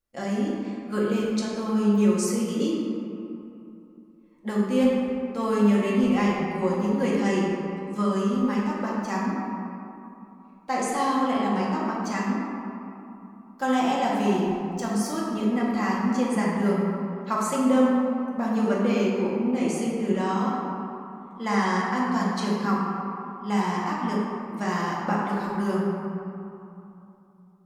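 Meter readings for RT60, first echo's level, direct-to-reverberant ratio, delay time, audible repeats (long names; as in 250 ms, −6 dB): 2.9 s, no echo audible, −5.5 dB, no echo audible, no echo audible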